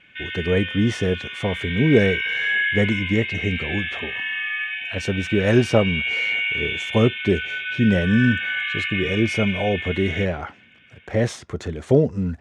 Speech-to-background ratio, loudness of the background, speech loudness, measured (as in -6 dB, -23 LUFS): 2.5 dB, -25.0 LUFS, -22.5 LUFS